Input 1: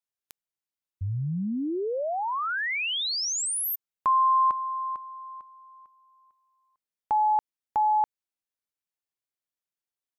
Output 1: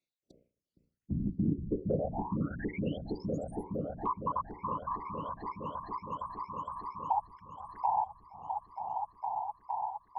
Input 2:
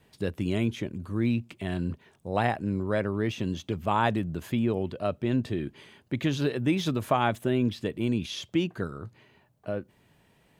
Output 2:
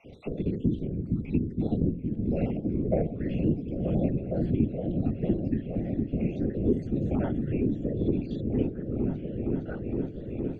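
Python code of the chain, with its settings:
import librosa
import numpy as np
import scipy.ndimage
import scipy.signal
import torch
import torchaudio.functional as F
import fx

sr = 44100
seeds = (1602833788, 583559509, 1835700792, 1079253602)

y = fx.spec_dropout(x, sr, seeds[0], share_pct=65)
y = fx.hum_notches(y, sr, base_hz=60, count=9)
y = fx.hpss(y, sr, part='percussive', gain_db=-16)
y = fx.graphic_eq(y, sr, hz=(125, 250, 500, 1000, 2000), db=(7, 10, 10, -11, 6))
y = fx.rider(y, sr, range_db=5, speed_s=2.0)
y = fx.whisperise(y, sr, seeds[1])
y = fx.air_absorb(y, sr, metres=100.0)
y = fx.echo_opening(y, sr, ms=463, hz=200, octaves=1, feedback_pct=70, wet_db=-3)
y = fx.band_squash(y, sr, depth_pct=70)
y = y * 10.0 ** (-2.5 / 20.0)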